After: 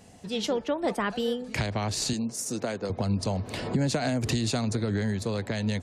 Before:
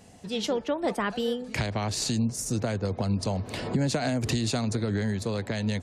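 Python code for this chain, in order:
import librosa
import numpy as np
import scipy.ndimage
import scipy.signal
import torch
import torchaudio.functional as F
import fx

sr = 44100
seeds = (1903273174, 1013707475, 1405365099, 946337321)

y = fx.highpass(x, sr, hz=230.0, slope=12, at=(2.13, 2.9))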